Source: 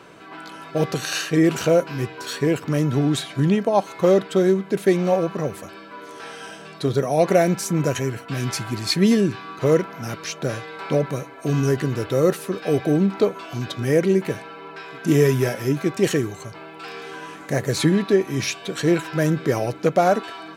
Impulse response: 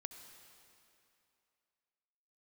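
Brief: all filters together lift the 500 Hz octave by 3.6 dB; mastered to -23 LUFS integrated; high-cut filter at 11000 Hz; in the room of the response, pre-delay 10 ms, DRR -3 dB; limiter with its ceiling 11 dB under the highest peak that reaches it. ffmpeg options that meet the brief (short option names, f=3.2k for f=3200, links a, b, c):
-filter_complex "[0:a]lowpass=11k,equalizer=f=500:t=o:g=4.5,alimiter=limit=-12.5dB:level=0:latency=1,asplit=2[a][b];[1:a]atrim=start_sample=2205,adelay=10[c];[b][c]afir=irnorm=-1:irlink=0,volume=7dB[d];[a][d]amix=inputs=2:normalize=0,volume=-4dB"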